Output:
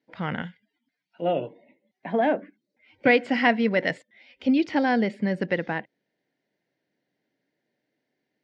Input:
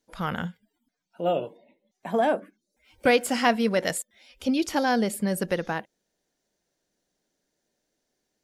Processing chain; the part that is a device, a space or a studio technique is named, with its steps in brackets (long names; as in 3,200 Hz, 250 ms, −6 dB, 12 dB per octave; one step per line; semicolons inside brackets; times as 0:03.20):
high-pass filter 82 Hz
guitar cabinet (loudspeaker in its box 96–4,000 Hz, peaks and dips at 130 Hz +7 dB, 280 Hz +5 dB, 1,200 Hz −7 dB, 2,000 Hz +8 dB, 3,600 Hz −4 dB)
0:00.42–0:01.22: tilt shelving filter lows −6.5 dB, about 1,400 Hz